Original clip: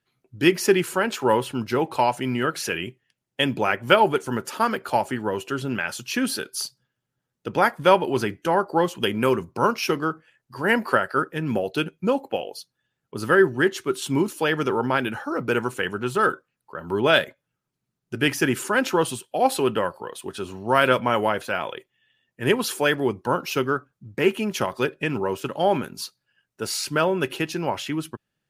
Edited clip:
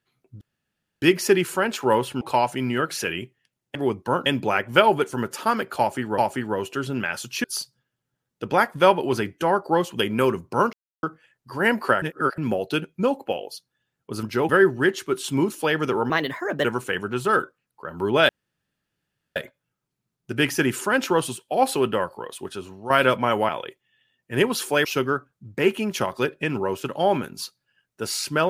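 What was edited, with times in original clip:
0:00.41: splice in room tone 0.61 s
0:01.60–0:01.86: move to 0:13.27
0:04.93–0:05.32: repeat, 2 plays
0:06.19–0:06.48: remove
0:09.77–0:10.07: silence
0:11.06–0:11.42: reverse
0:14.88–0:15.55: play speed 122%
0:17.19: splice in room tone 1.07 s
0:20.25–0:20.73: fade out linear, to −11 dB
0:21.32–0:21.58: remove
0:22.94–0:23.45: move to 0:03.40

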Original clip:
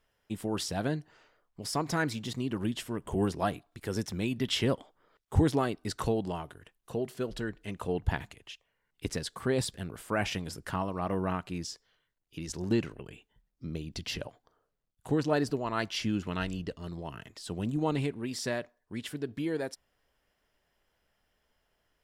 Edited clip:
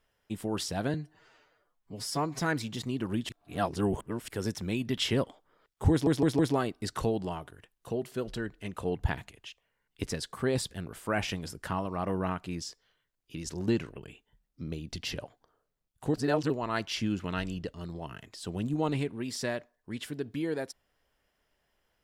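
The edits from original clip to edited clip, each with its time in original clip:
0:00.94–0:01.92: time-stretch 1.5×
0:02.80–0:03.79: reverse
0:05.42: stutter 0.16 s, 4 plays
0:15.17–0:15.53: reverse

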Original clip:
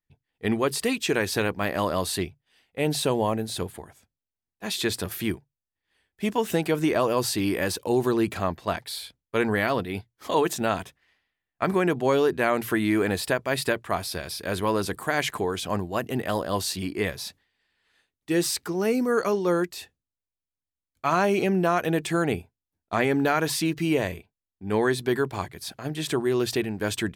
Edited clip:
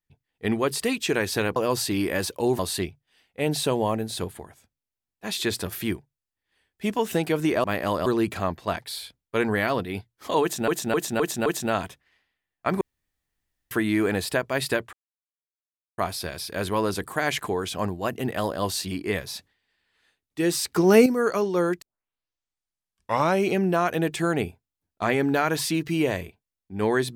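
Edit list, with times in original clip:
0:01.56–0:01.98: swap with 0:07.03–0:08.06
0:10.42–0:10.68: repeat, 5 plays
0:11.77–0:12.67: fill with room tone
0:13.89: splice in silence 1.05 s
0:18.67–0:18.97: clip gain +9 dB
0:19.73: tape start 1.61 s

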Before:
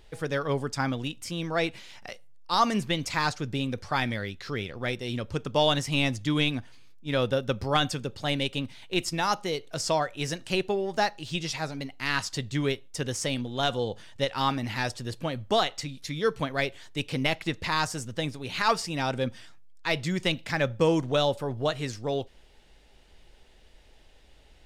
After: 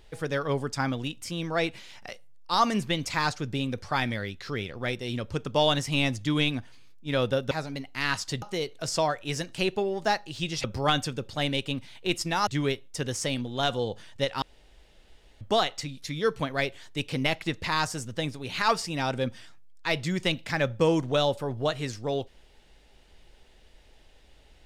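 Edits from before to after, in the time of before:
0:07.51–0:09.34: swap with 0:11.56–0:12.47
0:14.42–0:15.41: fill with room tone

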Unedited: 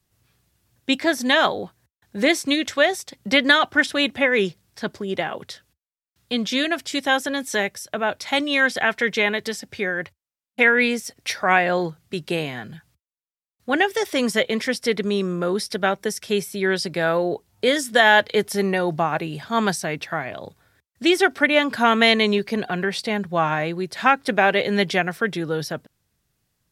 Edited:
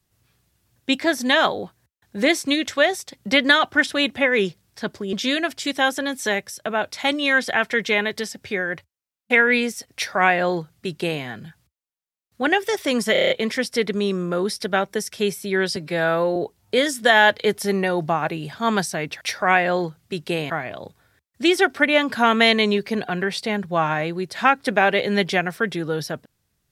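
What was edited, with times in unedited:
0:05.13–0:06.41: remove
0:11.22–0:12.51: duplicate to 0:20.11
0:14.40: stutter 0.03 s, 7 plays
0:16.86–0:17.26: time-stretch 1.5×

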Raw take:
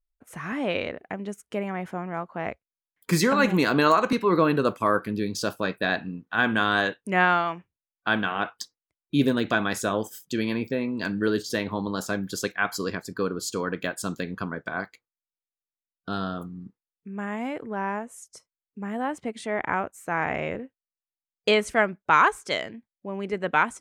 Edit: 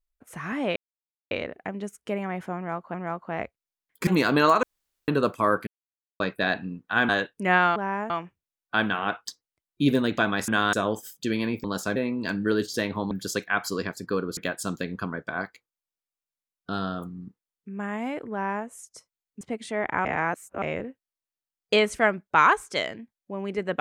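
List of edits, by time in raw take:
0:00.76: splice in silence 0.55 s
0:02.01–0:02.39: repeat, 2 plays
0:03.14–0:03.49: remove
0:04.05–0:04.50: fill with room tone
0:05.09–0:05.62: silence
0:06.51–0:06.76: move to 0:09.81
0:11.87–0:12.19: move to 0:10.72
0:13.45–0:13.76: remove
0:17.71–0:18.05: duplicate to 0:07.43
0:18.80–0:19.16: remove
0:19.80–0:20.37: reverse

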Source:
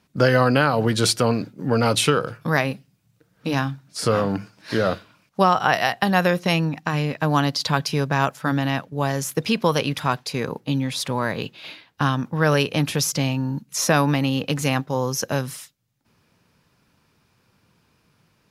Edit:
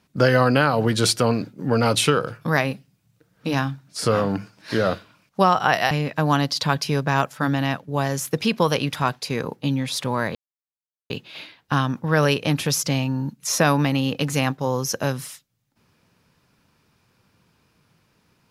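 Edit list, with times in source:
0:05.91–0:06.95: remove
0:11.39: splice in silence 0.75 s

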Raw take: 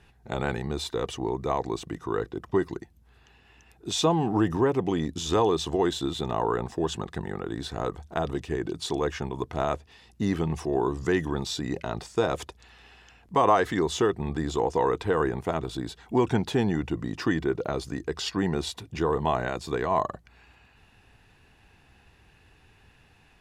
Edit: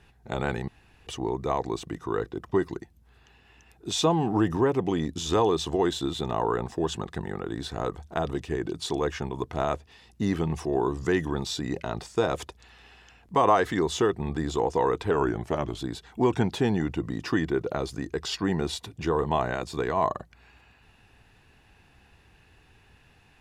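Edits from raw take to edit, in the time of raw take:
0:00.68–0:01.07: fill with room tone
0:15.11–0:15.72: play speed 91%

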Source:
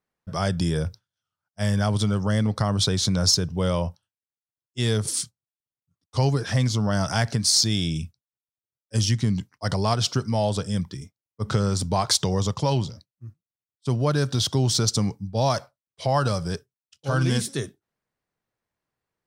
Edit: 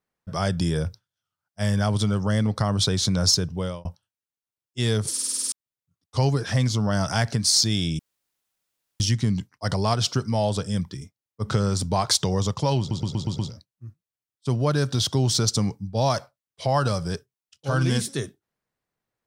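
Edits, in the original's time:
0:03.34–0:03.85: fade out equal-power
0:05.12: stutter in place 0.05 s, 8 plays
0:07.99–0:09.00: fill with room tone
0:12.79: stutter 0.12 s, 6 plays

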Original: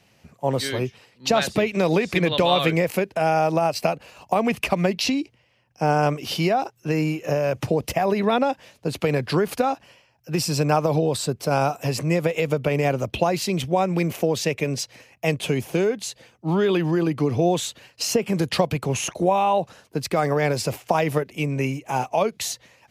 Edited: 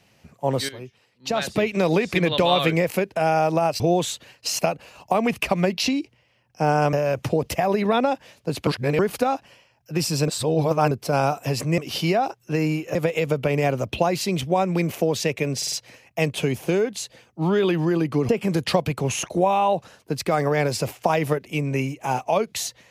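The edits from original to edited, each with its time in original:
0:00.69–0:01.65: fade in quadratic, from −13 dB
0:06.14–0:07.31: move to 0:12.16
0:09.05–0:09.37: reverse
0:10.66–0:11.29: reverse
0:14.78: stutter 0.05 s, 4 plays
0:17.35–0:18.14: move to 0:03.80

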